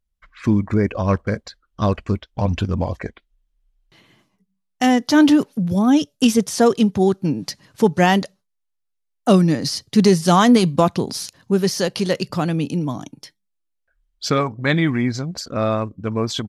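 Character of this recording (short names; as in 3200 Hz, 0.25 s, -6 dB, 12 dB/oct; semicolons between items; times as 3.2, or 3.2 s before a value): noise floor -75 dBFS; spectral tilt -5.5 dB/oct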